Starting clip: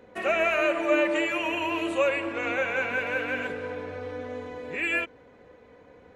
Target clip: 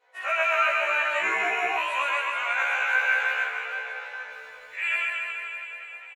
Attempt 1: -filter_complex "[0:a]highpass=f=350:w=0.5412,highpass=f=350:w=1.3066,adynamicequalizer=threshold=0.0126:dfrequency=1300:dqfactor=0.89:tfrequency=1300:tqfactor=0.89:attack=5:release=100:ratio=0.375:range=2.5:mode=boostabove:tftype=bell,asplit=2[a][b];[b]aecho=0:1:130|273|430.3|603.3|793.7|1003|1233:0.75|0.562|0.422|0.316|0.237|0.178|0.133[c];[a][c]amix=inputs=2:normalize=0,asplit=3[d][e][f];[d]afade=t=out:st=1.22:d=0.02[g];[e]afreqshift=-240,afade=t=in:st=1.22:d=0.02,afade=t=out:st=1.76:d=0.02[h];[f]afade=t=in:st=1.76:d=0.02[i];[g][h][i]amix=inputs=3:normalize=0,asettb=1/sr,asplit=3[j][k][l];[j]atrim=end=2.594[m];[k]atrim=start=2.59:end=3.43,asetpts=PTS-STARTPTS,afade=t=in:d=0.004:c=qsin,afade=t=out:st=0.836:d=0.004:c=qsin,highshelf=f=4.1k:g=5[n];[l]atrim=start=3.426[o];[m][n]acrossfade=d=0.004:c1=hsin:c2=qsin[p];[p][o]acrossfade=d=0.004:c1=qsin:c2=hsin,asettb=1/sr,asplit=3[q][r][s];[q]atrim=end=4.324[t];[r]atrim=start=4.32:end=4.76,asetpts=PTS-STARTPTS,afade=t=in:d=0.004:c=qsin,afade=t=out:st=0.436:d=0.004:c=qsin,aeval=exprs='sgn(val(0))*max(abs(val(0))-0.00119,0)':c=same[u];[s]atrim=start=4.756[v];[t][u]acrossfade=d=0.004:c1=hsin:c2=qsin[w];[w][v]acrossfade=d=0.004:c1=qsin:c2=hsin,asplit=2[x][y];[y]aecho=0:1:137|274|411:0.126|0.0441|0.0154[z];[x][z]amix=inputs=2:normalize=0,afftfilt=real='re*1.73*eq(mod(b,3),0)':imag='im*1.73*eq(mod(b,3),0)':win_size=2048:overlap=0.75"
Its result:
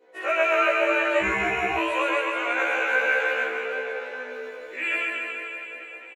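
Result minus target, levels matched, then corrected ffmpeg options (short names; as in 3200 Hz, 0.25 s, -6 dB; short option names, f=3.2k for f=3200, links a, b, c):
250 Hz band +16.0 dB
-filter_complex "[0:a]highpass=f=760:w=0.5412,highpass=f=760:w=1.3066,adynamicequalizer=threshold=0.0126:dfrequency=1300:dqfactor=0.89:tfrequency=1300:tqfactor=0.89:attack=5:release=100:ratio=0.375:range=2.5:mode=boostabove:tftype=bell,asplit=2[a][b];[b]aecho=0:1:130|273|430.3|603.3|793.7|1003|1233:0.75|0.562|0.422|0.316|0.237|0.178|0.133[c];[a][c]amix=inputs=2:normalize=0,asplit=3[d][e][f];[d]afade=t=out:st=1.22:d=0.02[g];[e]afreqshift=-240,afade=t=in:st=1.22:d=0.02,afade=t=out:st=1.76:d=0.02[h];[f]afade=t=in:st=1.76:d=0.02[i];[g][h][i]amix=inputs=3:normalize=0,asettb=1/sr,asplit=3[j][k][l];[j]atrim=end=2.594[m];[k]atrim=start=2.59:end=3.43,asetpts=PTS-STARTPTS,afade=t=in:d=0.004:c=qsin,afade=t=out:st=0.836:d=0.004:c=qsin,highshelf=f=4.1k:g=5[n];[l]atrim=start=3.426[o];[m][n]acrossfade=d=0.004:c1=hsin:c2=qsin[p];[p][o]acrossfade=d=0.004:c1=qsin:c2=hsin,asettb=1/sr,asplit=3[q][r][s];[q]atrim=end=4.324[t];[r]atrim=start=4.32:end=4.76,asetpts=PTS-STARTPTS,afade=t=in:d=0.004:c=qsin,afade=t=out:st=0.436:d=0.004:c=qsin,aeval=exprs='sgn(val(0))*max(abs(val(0))-0.00119,0)':c=same[u];[s]atrim=start=4.756[v];[t][u]acrossfade=d=0.004:c1=hsin:c2=qsin[w];[w][v]acrossfade=d=0.004:c1=qsin:c2=hsin,asplit=2[x][y];[y]aecho=0:1:137|274|411:0.126|0.0441|0.0154[z];[x][z]amix=inputs=2:normalize=0,afftfilt=real='re*1.73*eq(mod(b,3),0)':imag='im*1.73*eq(mod(b,3),0)':win_size=2048:overlap=0.75"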